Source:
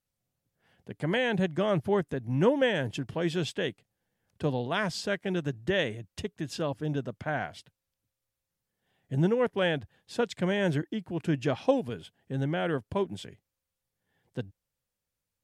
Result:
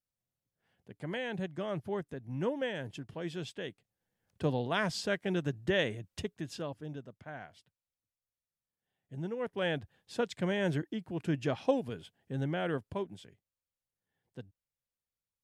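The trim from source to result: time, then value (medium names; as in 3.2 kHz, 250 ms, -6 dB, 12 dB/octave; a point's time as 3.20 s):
3.67 s -9.5 dB
4.43 s -2 dB
6.22 s -2 dB
7.07 s -13.5 dB
9.23 s -13.5 dB
9.73 s -4 dB
12.77 s -4 dB
13.24 s -11 dB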